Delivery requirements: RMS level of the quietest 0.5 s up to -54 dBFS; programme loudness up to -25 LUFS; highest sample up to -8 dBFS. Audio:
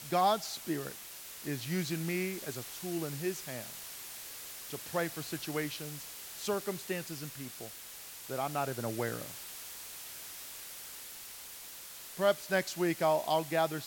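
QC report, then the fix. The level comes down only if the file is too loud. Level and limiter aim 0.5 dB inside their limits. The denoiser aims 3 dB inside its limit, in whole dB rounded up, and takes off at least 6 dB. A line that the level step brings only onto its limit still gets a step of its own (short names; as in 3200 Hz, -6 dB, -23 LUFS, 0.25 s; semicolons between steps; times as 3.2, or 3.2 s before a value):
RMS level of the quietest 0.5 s -48 dBFS: fail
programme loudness -36.0 LUFS: OK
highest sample -16.0 dBFS: OK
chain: denoiser 9 dB, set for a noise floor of -48 dBFS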